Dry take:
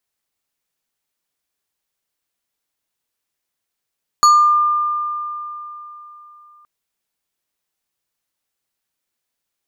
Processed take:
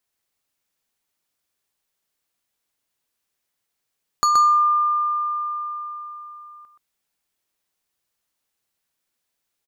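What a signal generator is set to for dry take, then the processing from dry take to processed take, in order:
FM tone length 2.42 s, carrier 1200 Hz, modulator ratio 4.68, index 0.63, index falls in 0.46 s exponential, decay 3.61 s, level -6 dB
compressor 1.5:1, threshold -30 dBFS; on a send: echo 0.125 s -5.5 dB

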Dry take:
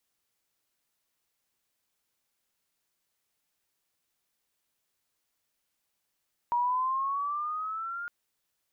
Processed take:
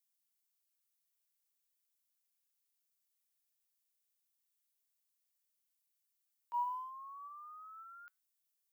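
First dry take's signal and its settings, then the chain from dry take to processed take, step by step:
gliding synth tone sine, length 1.56 s, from 950 Hz, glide +7 st, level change -10.5 dB, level -23.5 dB
gate -27 dBFS, range -17 dB; tilt +4.5 dB/oct; resonator 88 Hz, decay 0.34 s, harmonics odd, mix 30%

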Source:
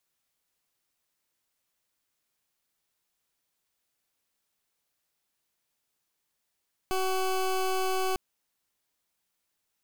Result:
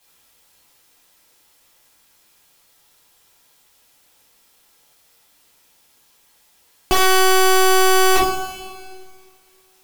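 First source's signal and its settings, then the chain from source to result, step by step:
pulse 376 Hz, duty 20% -27.5 dBFS 1.25 s
two-slope reverb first 0.49 s, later 2 s, from -16 dB, DRR -6 dB; sine folder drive 12 dB, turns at -10.5 dBFS

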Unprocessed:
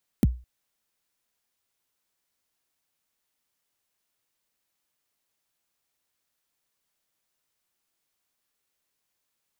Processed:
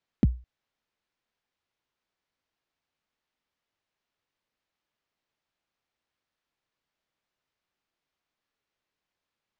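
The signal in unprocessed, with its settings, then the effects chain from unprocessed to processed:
kick drum length 0.21 s, from 310 Hz, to 61 Hz, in 29 ms, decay 0.32 s, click on, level -12 dB
air absorption 170 m

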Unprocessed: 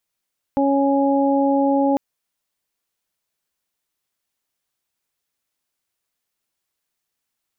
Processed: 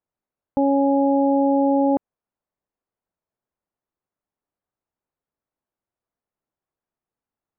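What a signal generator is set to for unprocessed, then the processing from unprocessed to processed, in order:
steady additive tone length 1.40 s, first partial 277 Hz, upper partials -3/-4.5 dB, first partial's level -17 dB
LPF 1000 Hz 12 dB/oct

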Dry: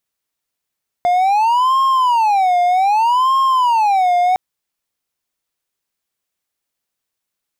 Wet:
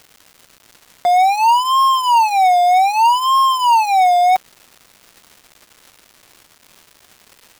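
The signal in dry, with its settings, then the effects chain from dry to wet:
siren wail 708–1070 Hz 0.64/s triangle -9 dBFS 3.31 s
tilt +2.5 dB/oct; comb 5.4 ms, depth 58%; crackle 490/s -33 dBFS

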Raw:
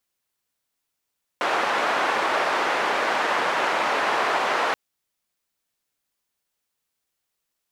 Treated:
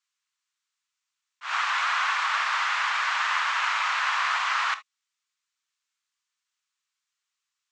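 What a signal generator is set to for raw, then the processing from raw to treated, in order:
noise band 520–1300 Hz, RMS -23 dBFS 3.33 s
elliptic band-pass 1100–7400 Hz, stop band 60 dB; auto swell 0.151 s; non-linear reverb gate 90 ms flat, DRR 11.5 dB

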